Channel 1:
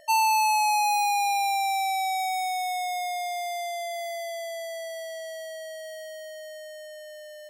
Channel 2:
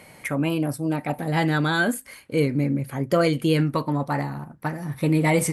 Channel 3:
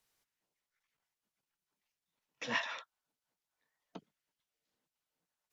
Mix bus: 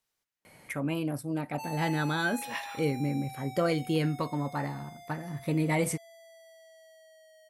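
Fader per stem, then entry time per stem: −19.0, −7.5, −3.0 decibels; 1.50, 0.45, 0.00 seconds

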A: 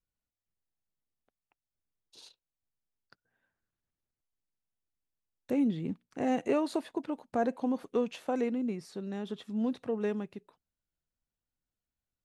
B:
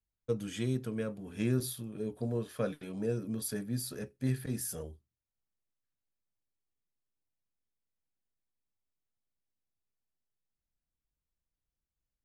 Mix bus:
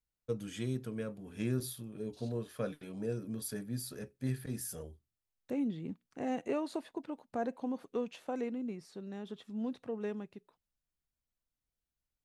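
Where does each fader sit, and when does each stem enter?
−6.0, −3.5 decibels; 0.00, 0.00 seconds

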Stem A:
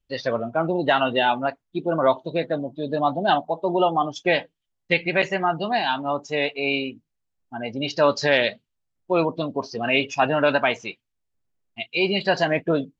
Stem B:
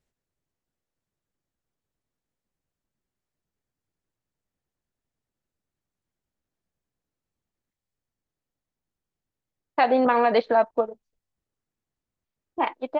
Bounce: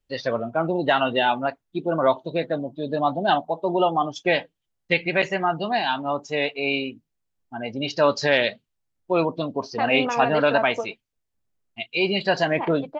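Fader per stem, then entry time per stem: −0.5, −6.0 decibels; 0.00, 0.00 seconds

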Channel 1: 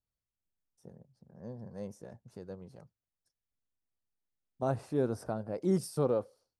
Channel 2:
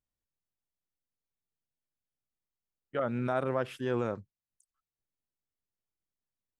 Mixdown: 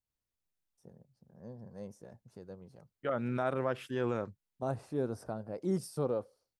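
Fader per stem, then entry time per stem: −3.5, −2.0 decibels; 0.00, 0.10 seconds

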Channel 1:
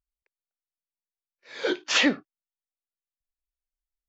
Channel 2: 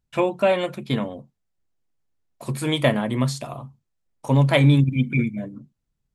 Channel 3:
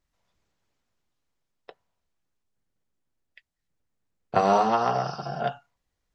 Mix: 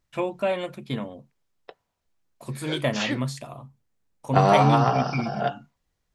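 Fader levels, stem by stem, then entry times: −7.5, −6.0, +2.0 decibels; 1.05, 0.00, 0.00 seconds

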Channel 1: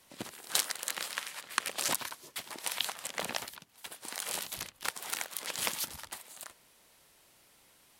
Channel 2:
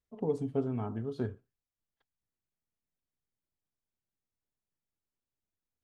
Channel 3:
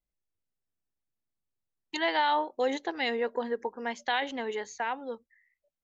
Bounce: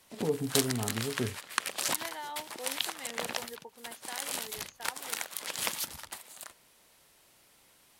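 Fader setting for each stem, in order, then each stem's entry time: +0.5, +1.0, −15.0 decibels; 0.00, 0.00, 0.00 seconds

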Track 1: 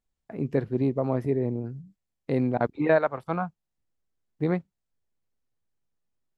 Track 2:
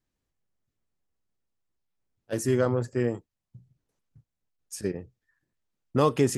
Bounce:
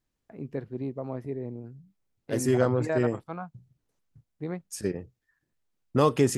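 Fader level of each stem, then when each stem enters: −8.5, +0.5 decibels; 0.00, 0.00 seconds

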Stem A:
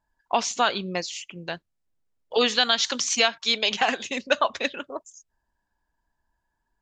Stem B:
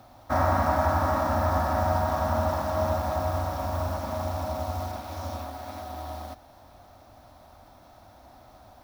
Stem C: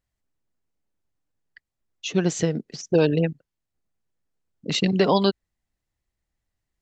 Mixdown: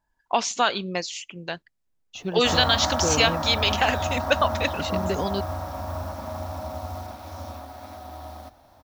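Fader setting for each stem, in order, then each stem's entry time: +0.5, −2.5, −8.5 decibels; 0.00, 2.15, 0.10 seconds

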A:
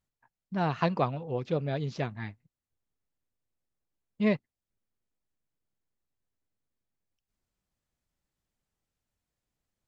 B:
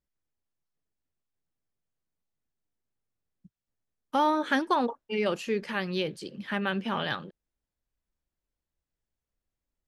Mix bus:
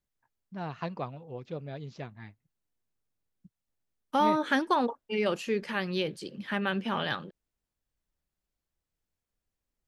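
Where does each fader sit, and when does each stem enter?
−8.5, −0.5 decibels; 0.00, 0.00 seconds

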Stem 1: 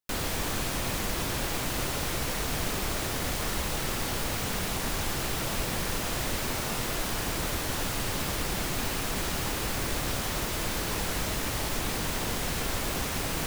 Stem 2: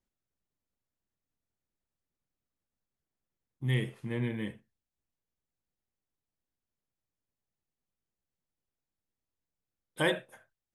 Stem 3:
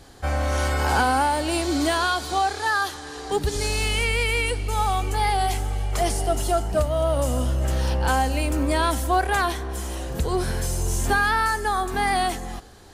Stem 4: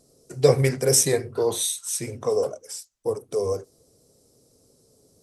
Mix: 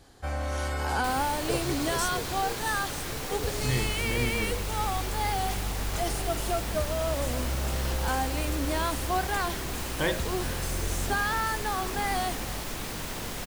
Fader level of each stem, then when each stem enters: −4.5, 0.0, −7.5, −15.5 decibels; 0.95, 0.00, 0.00, 1.05 seconds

